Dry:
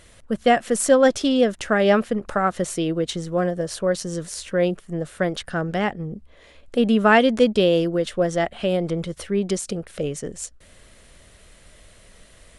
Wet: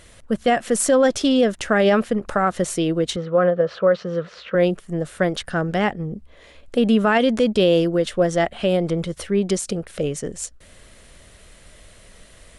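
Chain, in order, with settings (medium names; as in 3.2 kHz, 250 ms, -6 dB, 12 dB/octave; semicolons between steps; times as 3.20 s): 3.16–4.55 s: cabinet simulation 130–3500 Hz, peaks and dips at 290 Hz -9 dB, 510 Hz +7 dB, 1.3 kHz +10 dB; loudness maximiser +9.5 dB; trim -7 dB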